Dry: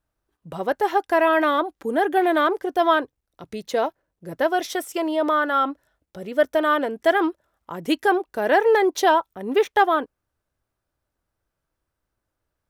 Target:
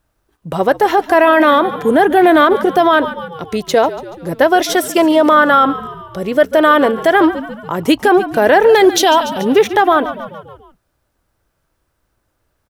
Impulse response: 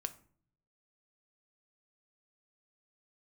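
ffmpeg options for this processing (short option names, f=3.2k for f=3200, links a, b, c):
-filter_complex "[0:a]asettb=1/sr,asplit=3[a][b][c];[a]atrim=end=8.694[d];[b]atrim=start=8.69:end=9.45,asetpts=PTS-STARTPTS,afade=t=in:d=0.004:c=qsin,afade=t=out:st=0.756:d=0.004:c=qsin,highshelf=f=2.2k:t=q:w=1.5:g=6[e];[c]atrim=start=9.446[f];[d][e]acrossfade=d=0.004:c1=hsin:c2=qsin[g];[g][f]acrossfade=d=0.004:c1=qsin:c2=hsin,asplit=6[h][i][j][k][l][m];[i]adelay=143,afreqshift=-53,volume=-17.5dB[n];[j]adelay=286,afreqshift=-106,volume=-22.4dB[o];[k]adelay=429,afreqshift=-159,volume=-27.3dB[p];[l]adelay=572,afreqshift=-212,volume=-32.1dB[q];[m]adelay=715,afreqshift=-265,volume=-37dB[r];[h][n][o][p][q][r]amix=inputs=6:normalize=0,alimiter=level_in=14dB:limit=-1dB:release=50:level=0:latency=1,volume=-1dB"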